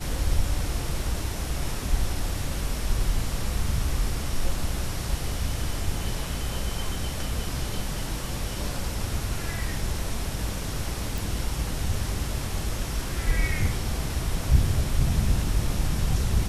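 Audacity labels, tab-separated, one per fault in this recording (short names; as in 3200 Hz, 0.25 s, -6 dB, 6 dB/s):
11.180000	11.180000	pop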